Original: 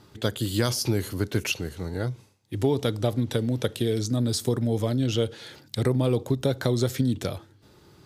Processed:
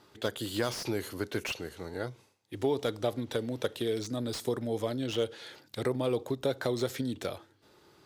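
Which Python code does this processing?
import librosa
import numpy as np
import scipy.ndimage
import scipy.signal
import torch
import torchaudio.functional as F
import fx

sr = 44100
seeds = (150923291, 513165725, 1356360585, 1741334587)

y = fx.bass_treble(x, sr, bass_db=-12, treble_db=-3)
y = fx.slew_limit(y, sr, full_power_hz=110.0)
y = F.gain(torch.from_numpy(y), -2.5).numpy()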